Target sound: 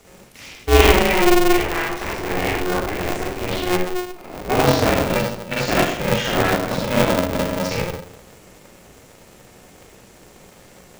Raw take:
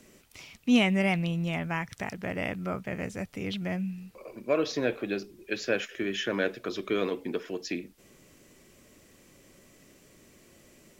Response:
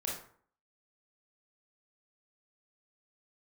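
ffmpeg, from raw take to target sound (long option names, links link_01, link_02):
-filter_complex "[1:a]atrim=start_sample=2205,asetrate=28224,aresample=44100[link_01];[0:a][link_01]afir=irnorm=-1:irlink=0,aeval=exprs='val(0)*sgn(sin(2*PI*180*n/s))':channel_layout=same,volume=5dB"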